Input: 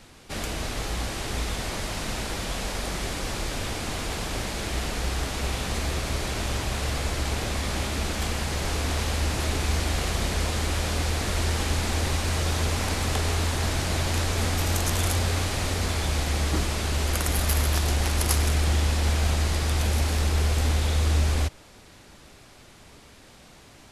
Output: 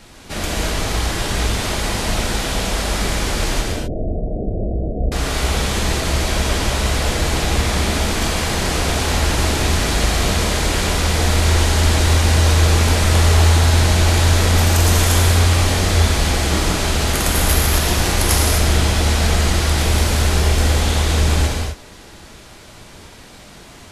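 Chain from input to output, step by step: 3.61–5.12 s: steep low-pass 700 Hz 96 dB/octave; gated-style reverb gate 280 ms flat, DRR -2 dB; trim +5.5 dB

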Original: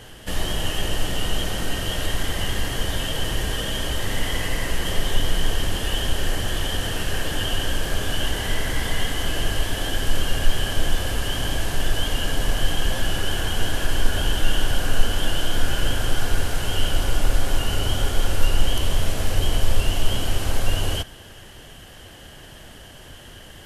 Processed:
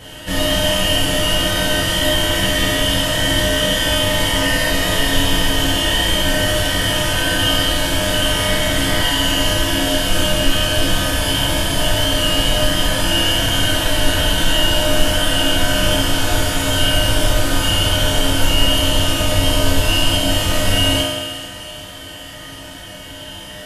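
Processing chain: comb of notches 400 Hz; thinning echo 442 ms, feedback 47%, level -14.5 dB; reverberation RT60 1.5 s, pre-delay 3 ms, DRR -7 dB; trim +3.5 dB

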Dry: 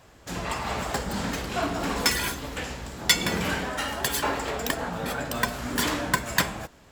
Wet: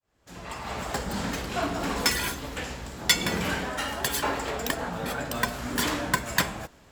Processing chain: fade-in on the opening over 1.04 s; trim -1 dB

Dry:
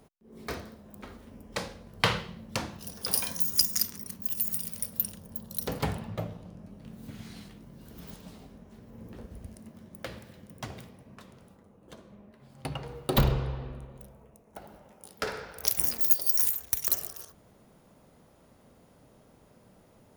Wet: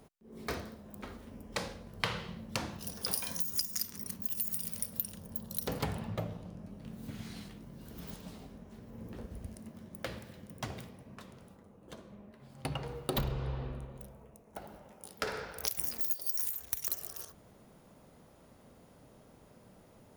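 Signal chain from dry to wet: compression 4:1, threshold -31 dBFS, peak gain reduction 13.5 dB

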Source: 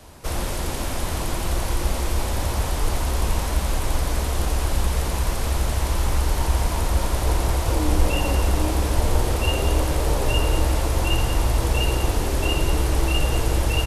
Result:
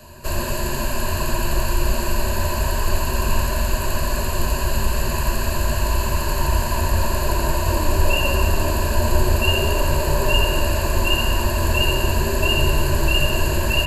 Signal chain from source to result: rippled EQ curve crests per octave 1.4, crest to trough 15 dB; band-passed feedback delay 74 ms, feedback 83%, band-pass 1.6 kHz, level -7 dB

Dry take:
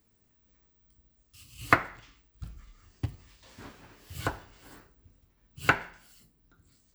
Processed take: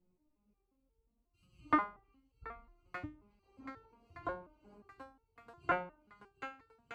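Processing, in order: local Wiener filter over 25 samples; on a send: shuffle delay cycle 1217 ms, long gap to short 1.5:1, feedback 45%, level -16 dB; on the sum: low-pass that closes with the level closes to 1.4 kHz, closed at -32 dBFS; resonator arpeggio 5.6 Hz 180–450 Hz; trim +9 dB

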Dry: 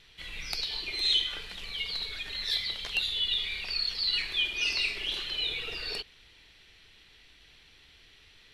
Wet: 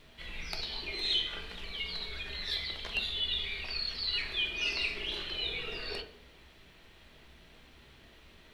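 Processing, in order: added noise pink -61 dBFS; treble shelf 3.5 kHz -9.5 dB; on a send: reverberation RT60 0.60 s, pre-delay 3 ms, DRR 5 dB

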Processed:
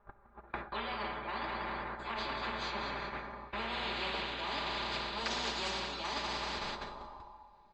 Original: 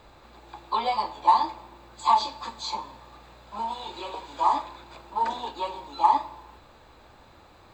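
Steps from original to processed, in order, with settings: bass shelf 65 Hz +6.5 dB; comb 5 ms, depth 77%; on a send: thinning echo 191 ms, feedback 55%, high-pass 390 Hz, level -12 dB; on the sum: gate -42 dBFS, range -39 dB; treble shelf 2.6 kHz -11.5 dB; plate-style reverb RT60 1.5 s, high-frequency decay 0.85×, DRR 12 dB; low-pass sweep 1.5 kHz -> 5.3 kHz, 2.83–5.71 s; reverse; compression 6:1, threshold -30 dBFS, peak gain reduction 16.5 dB; reverse; spectrum-flattening compressor 4:1; trim -2 dB

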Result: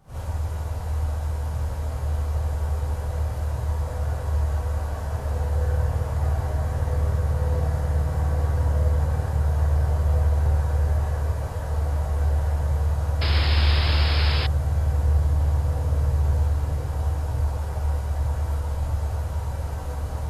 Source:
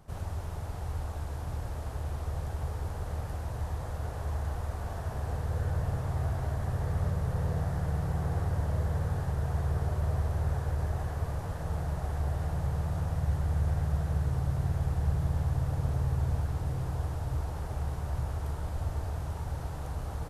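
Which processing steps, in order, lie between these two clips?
gated-style reverb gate 90 ms rising, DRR -8 dB; painted sound noise, 13.21–14.47 s, 200–5300 Hz -26 dBFS; trim -3 dB

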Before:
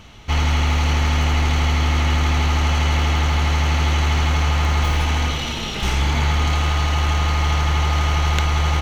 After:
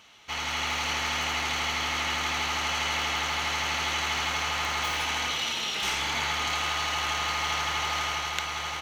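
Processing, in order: level rider gain up to 5.5 dB; high-pass 1.2 kHz 6 dB/octave; trim -5.5 dB

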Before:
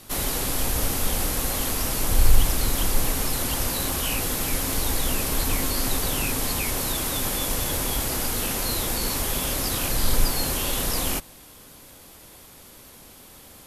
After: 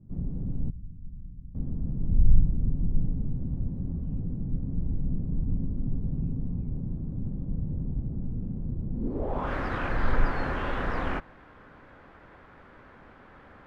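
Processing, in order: 0.70–1.55 s: amplifier tone stack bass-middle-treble 6-0-2; low-pass sweep 170 Hz -> 1.6 kHz, 8.92–9.53 s; treble shelf 4.6 kHz -9.5 dB; trim -2 dB

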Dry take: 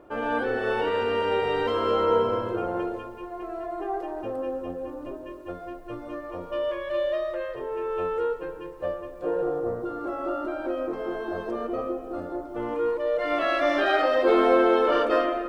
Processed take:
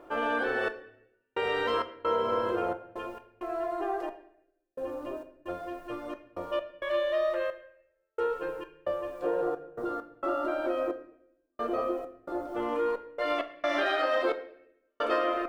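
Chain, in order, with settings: bass shelf 390 Hz -10 dB; compression 6:1, threshold -27 dBFS, peak gain reduction 8.5 dB; trance gate "xxx...xx.xxx.x." 66 bpm -60 dB; on a send: reverberation RT60 0.75 s, pre-delay 3 ms, DRR 8.5 dB; on the sum: trim +3 dB

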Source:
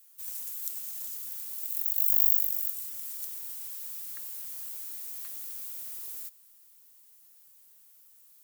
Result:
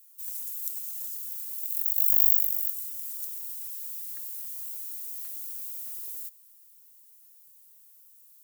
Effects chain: treble shelf 5.1 kHz +8.5 dB; trim -6 dB

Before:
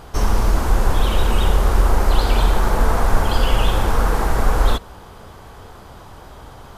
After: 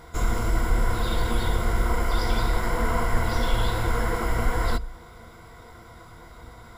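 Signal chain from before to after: rippled EQ curve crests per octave 1.9, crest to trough 13 dB; formant shift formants +3 st; trim -8 dB

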